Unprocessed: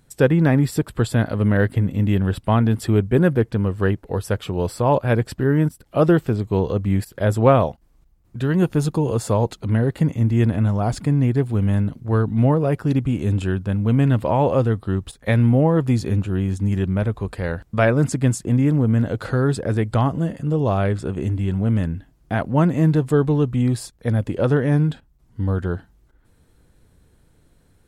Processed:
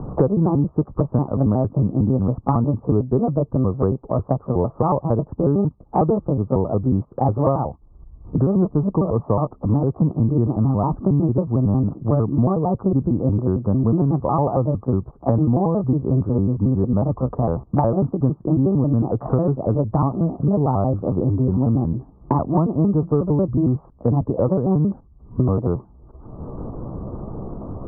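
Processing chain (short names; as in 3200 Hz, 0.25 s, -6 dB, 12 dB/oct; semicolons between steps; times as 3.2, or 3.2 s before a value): trilling pitch shifter +4.5 st, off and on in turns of 91 ms; Chebyshev low-pass 1200 Hz, order 6; three-band squash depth 100%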